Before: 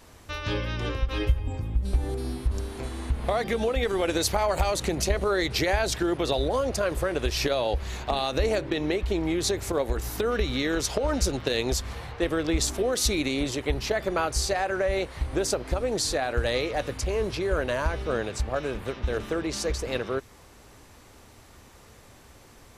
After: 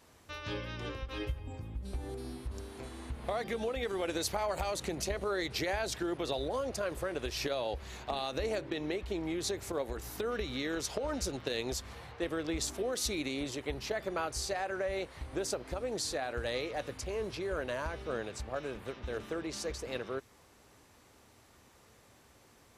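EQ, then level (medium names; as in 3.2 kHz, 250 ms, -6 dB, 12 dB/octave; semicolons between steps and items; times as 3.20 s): high-pass 99 Hz 6 dB/octave; -8.5 dB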